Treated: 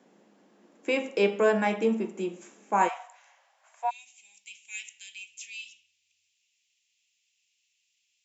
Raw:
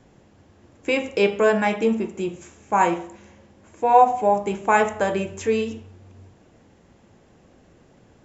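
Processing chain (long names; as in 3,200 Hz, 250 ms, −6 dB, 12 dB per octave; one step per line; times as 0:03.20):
elliptic high-pass filter 190 Hz, stop band 50 dB, from 0:02.87 680 Hz, from 0:03.89 2,500 Hz
level −4.5 dB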